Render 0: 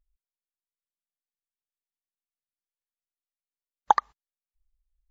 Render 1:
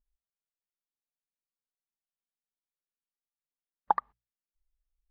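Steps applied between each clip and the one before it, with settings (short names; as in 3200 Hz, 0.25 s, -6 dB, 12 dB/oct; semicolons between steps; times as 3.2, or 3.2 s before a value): LPF 1700 Hz 12 dB/oct; bell 220 Hz +6 dB; notches 60/120/180 Hz; gain -6 dB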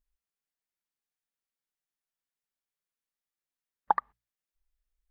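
bell 1800 Hz +4 dB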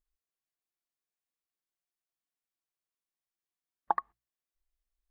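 small resonant body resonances 340/700/1100 Hz, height 8 dB, ringing for 70 ms; gain -4.5 dB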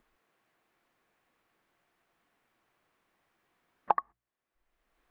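three-band squash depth 70%; gain +5.5 dB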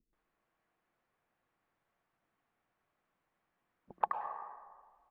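bands offset in time lows, highs 0.13 s, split 350 Hz; plate-style reverb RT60 1.7 s, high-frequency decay 0.45×, pre-delay 90 ms, DRR 5.5 dB; mismatched tape noise reduction decoder only; gain -5.5 dB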